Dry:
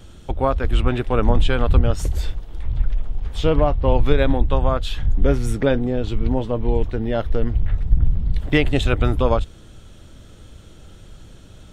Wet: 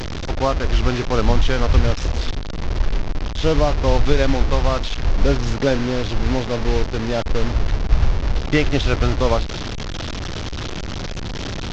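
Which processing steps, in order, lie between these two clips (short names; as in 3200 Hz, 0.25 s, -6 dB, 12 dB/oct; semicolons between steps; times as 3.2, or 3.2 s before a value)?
delta modulation 32 kbps, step -20 dBFS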